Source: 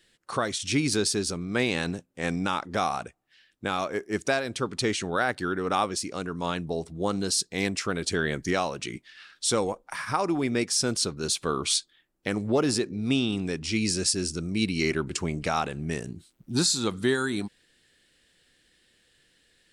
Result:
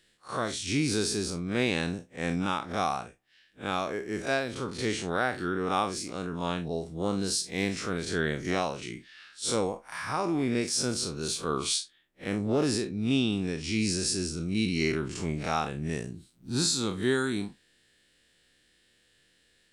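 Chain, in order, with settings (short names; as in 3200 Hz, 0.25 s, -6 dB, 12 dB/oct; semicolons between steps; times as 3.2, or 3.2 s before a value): time blur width 90 ms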